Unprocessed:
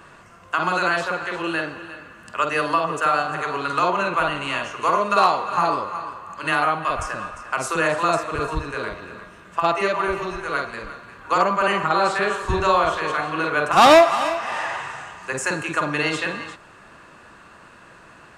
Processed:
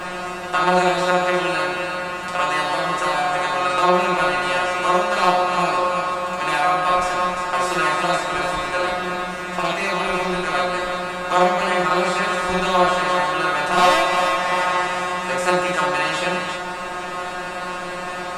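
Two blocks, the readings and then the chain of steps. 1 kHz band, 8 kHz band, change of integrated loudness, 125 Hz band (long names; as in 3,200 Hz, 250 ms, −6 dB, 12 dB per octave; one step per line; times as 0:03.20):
+2.0 dB, +3.0 dB, +1.0 dB, +2.0 dB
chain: compressor on every frequency bin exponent 0.4
tuned comb filter 180 Hz, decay 0.24 s, harmonics all, mix 100%
level +5 dB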